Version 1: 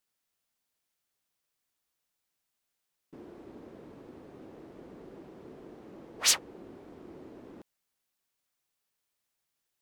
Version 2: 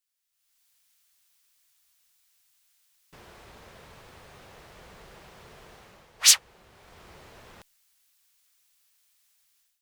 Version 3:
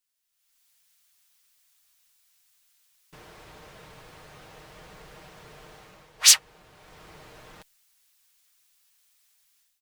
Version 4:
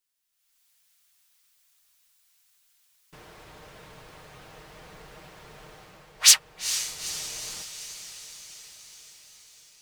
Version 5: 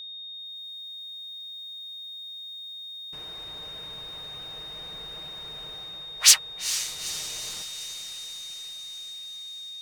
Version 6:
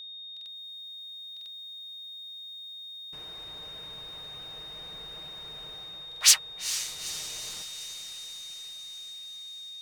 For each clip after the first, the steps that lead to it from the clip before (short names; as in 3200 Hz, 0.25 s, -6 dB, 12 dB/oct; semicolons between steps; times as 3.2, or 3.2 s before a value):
AGC gain up to 16 dB; passive tone stack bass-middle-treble 10-0-10
comb 6.5 ms, depth 44%; gain +1 dB
diffused feedback echo 0.453 s, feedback 64%, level -11 dB
whine 3700 Hz -37 dBFS
stuck buffer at 0.32/1.32/6.07, samples 2048, times 2; gain -3 dB